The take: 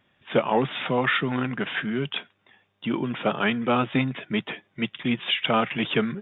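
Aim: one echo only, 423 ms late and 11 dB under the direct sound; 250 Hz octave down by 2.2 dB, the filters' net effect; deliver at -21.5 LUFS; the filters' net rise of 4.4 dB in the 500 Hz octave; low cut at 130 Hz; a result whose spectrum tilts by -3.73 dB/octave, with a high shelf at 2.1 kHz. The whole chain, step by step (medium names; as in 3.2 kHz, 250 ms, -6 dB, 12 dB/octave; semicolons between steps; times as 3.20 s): high-pass 130 Hz; peaking EQ 250 Hz -3.5 dB; peaking EQ 500 Hz +6.5 dB; treble shelf 2.1 kHz -7 dB; delay 423 ms -11 dB; trim +3.5 dB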